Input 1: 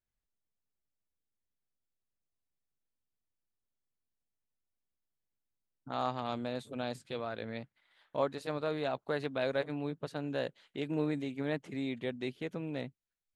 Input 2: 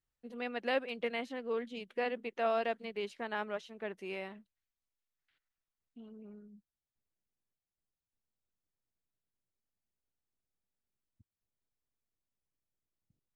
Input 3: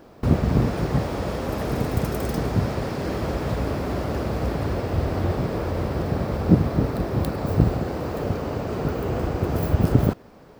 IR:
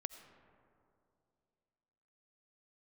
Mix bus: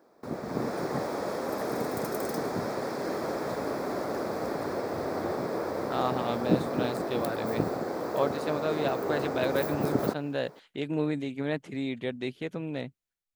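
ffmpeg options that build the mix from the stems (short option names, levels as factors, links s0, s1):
-filter_complex "[0:a]volume=0.562[s0];[2:a]highpass=300,equalizer=f=2900:w=3.5:g=-14,volume=0.282[s1];[s0][s1]amix=inputs=2:normalize=0,dynaudnorm=f=150:g=7:m=2.82"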